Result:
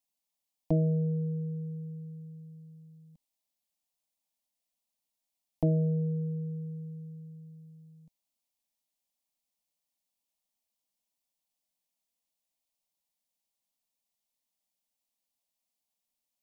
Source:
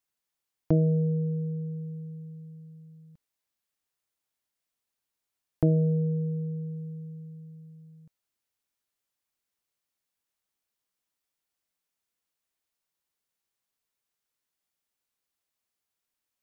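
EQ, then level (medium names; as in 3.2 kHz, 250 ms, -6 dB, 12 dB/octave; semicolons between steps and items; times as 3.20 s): static phaser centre 390 Hz, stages 6; 0.0 dB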